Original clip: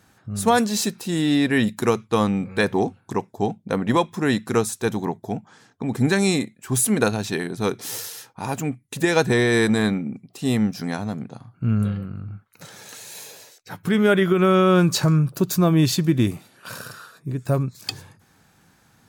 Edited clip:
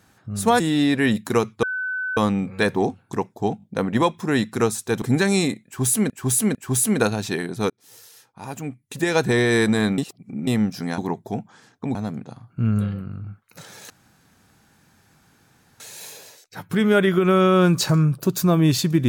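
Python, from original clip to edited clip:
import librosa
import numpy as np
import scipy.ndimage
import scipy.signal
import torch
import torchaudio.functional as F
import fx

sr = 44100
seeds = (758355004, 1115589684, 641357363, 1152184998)

y = fx.edit(x, sr, fx.cut(start_s=0.6, length_s=0.52),
    fx.insert_tone(at_s=2.15, length_s=0.54, hz=1510.0, db=-23.5),
    fx.stutter(start_s=3.56, slice_s=0.02, count=3),
    fx.move(start_s=4.96, length_s=0.97, to_s=10.99),
    fx.repeat(start_s=6.56, length_s=0.45, count=3),
    fx.fade_in_span(start_s=7.71, length_s=1.7),
    fx.reverse_span(start_s=9.99, length_s=0.49),
    fx.insert_room_tone(at_s=12.94, length_s=1.9), tone=tone)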